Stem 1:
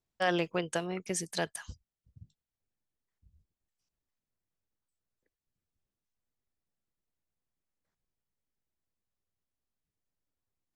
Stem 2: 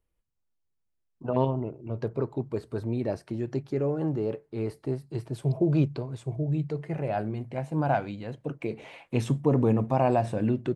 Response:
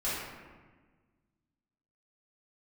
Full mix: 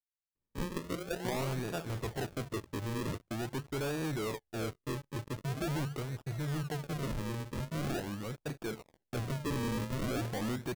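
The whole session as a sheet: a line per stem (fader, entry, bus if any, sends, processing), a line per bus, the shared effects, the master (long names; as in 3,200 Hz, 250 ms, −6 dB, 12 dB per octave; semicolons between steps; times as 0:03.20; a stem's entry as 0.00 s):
−5.0 dB, 0.35 s, send −13.5 dB, all-pass phaser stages 8, 2.4 Hz, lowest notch 200–4,000 Hz
−19.5 dB, 0.00 s, no send, notch filter 2,100 Hz, Q 27; noise gate −41 dBFS, range −9 dB; leveller curve on the samples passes 5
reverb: on, RT60 1.4 s, pre-delay 3 ms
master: sample-and-hold swept by an LFO 42×, swing 100% 0.44 Hz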